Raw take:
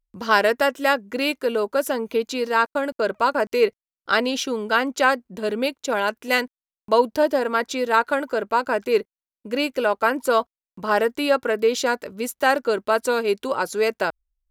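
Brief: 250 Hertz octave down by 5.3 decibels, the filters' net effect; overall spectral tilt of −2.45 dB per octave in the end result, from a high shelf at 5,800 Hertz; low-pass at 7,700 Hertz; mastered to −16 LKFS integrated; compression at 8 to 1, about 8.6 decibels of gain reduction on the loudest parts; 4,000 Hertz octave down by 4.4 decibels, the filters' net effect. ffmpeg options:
ffmpeg -i in.wav -af "lowpass=7700,equalizer=frequency=250:width_type=o:gain=-6,equalizer=frequency=4000:width_type=o:gain=-8,highshelf=frequency=5800:gain=6,acompressor=threshold=-22dB:ratio=8,volume=12dB" out.wav

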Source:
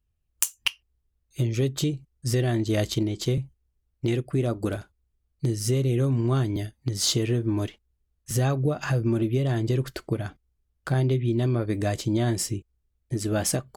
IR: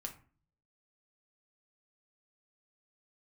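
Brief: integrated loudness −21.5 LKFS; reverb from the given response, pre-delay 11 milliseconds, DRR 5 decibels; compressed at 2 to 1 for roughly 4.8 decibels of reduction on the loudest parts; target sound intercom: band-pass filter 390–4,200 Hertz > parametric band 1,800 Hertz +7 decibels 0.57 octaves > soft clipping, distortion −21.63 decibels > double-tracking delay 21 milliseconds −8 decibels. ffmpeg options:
-filter_complex "[0:a]acompressor=threshold=-28dB:ratio=2,asplit=2[link_01][link_02];[1:a]atrim=start_sample=2205,adelay=11[link_03];[link_02][link_03]afir=irnorm=-1:irlink=0,volume=-2.5dB[link_04];[link_01][link_04]amix=inputs=2:normalize=0,highpass=390,lowpass=4200,equalizer=frequency=1800:width_type=o:width=0.57:gain=7,asoftclip=threshold=-18.5dB,asplit=2[link_05][link_06];[link_06]adelay=21,volume=-8dB[link_07];[link_05][link_07]amix=inputs=2:normalize=0,volume=13.5dB"

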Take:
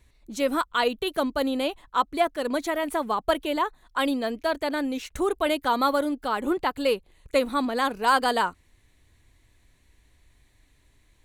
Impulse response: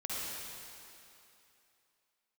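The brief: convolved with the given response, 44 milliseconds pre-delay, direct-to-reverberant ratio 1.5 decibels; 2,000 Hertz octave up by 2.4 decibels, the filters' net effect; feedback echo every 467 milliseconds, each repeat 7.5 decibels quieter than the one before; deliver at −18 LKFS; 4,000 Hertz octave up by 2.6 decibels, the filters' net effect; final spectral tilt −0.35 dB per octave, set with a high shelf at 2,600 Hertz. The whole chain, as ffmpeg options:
-filter_complex "[0:a]equalizer=frequency=2000:width_type=o:gain=5,highshelf=frequency=2600:gain=-8.5,equalizer=frequency=4000:width_type=o:gain=8.5,aecho=1:1:467|934|1401|1868|2335:0.422|0.177|0.0744|0.0312|0.0131,asplit=2[link_01][link_02];[1:a]atrim=start_sample=2205,adelay=44[link_03];[link_02][link_03]afir=irnorm=-1:irlink=0,volume=-5.5dB[link_04];[link_01][link_04]amix=inputs=2:normalize=0,volume=4.5dB"

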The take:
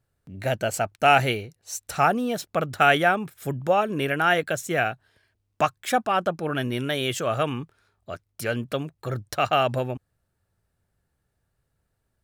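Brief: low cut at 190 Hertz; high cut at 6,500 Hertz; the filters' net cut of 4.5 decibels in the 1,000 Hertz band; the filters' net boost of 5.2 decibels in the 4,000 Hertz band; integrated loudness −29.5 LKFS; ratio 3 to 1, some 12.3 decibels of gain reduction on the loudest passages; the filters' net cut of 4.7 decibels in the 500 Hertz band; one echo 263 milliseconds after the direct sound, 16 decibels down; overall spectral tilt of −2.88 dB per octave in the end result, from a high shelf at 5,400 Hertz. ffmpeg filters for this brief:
ffmpeg -i in.wav -af "highpass=190,lowpass=6500,equalizer=frequency=500:width_type=o:gain=-4,equalizer=frequency=1000:width_type=o:gain=-6,equalizer=frequency=4000:width_type=o:gain=6,highshelf=frequency=5400:gain=8,acompressor=threshold=-31dB:ratio=3,aecho=1:1:263:0.158,volume=4dB" out.wav

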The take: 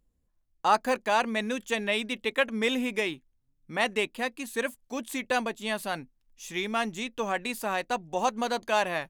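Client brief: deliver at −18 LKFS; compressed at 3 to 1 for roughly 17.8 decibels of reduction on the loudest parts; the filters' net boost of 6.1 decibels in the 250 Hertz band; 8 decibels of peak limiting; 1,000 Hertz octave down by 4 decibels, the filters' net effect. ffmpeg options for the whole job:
ffmpeg -i in.wav -af "equalizer=frequency=250:width_type=o:gain=7,equalizer=frequency=1000:width_type=o:gain=-6,acompressor=threshold=-46dB:ratio=3,volume=28.5dB,alimiter=limit=-7.5dB:level=0:latency=1" out.wav

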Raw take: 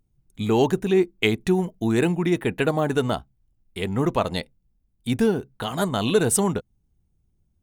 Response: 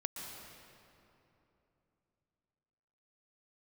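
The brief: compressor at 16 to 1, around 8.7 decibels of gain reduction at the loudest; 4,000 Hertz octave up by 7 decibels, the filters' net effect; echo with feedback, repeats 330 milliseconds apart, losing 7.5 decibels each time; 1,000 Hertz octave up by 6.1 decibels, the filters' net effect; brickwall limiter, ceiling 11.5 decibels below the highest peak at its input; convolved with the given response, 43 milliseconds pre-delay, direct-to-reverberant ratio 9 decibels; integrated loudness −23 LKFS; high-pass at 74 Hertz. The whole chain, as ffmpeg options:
-filter_complex "[0:a]highpass=74,equalizer=frequency=1000:width_type=o:gain=7.5,equalizer=frequency=4000:width_type=o:gain=8.5,acompressor=threshold=-20dB:ratio=16,alimiter=limit=-15.5dB:level=0:latency=1,aecho=1:1:330|660|990|1320|1650:0.422|0.177|0.0744|0.0312|0.0131,asplit=2[link_01][link_02];[1:a]atrim=start_sample=2205,adelay=43[link_03];[link_02][link_03]afir=irnorm=-1:irlink=0,volume=-9.5dB[link_04];[link_01][link_04]amix=inputs=2:normalize=0,volume=4dB"

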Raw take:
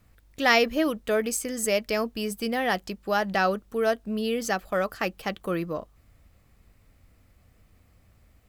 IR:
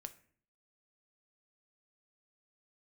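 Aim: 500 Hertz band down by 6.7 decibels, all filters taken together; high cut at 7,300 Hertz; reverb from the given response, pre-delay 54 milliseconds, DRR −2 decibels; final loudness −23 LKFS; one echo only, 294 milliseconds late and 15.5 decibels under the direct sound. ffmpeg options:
-filter_complex "[0:a]lowpass=7300,equalizer=frequency=500:width_type=o:gain=-8.5,aecho=1:1:294:0.168,asplit=2[link_01][link_02];[1:a]atrim=start_sample=2205,adelay=54[link_03];[link_02][link_03]afir=irnorm=-1:irlink=0,volume=7dB[link_04];[link_01][link_04]amix=inputs=2:normalize=0,volume=2dB"

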